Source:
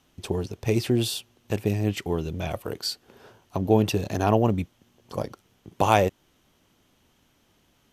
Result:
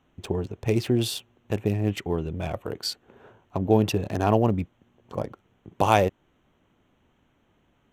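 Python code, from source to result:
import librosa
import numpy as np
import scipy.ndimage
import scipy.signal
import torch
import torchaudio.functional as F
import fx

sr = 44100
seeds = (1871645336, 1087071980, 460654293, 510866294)

y = fx.wiener(x, sr, points=9)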